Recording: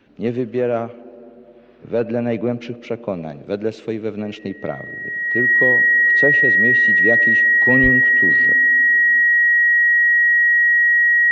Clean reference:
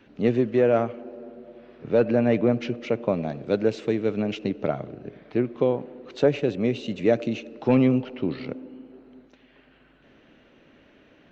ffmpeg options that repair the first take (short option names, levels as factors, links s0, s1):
-filter_complex "[0:a]bandreject=f=1900:w=30,asplit=3[s0][s1][s2];[s0]afade=t=out:st=7.82:d=0.02[s3];[s1]highpass=f=140:w=0.5412,highpass=f=140:w=1.3066,afade=t=in:st=7.82:d=0.02,afade=t=out:st=7.94:d=0.02[s4];[s2]afade=t=in:st=7.94:d=0.02[s5];[s3][s4][s5]amix=inputs=3:normalize=0"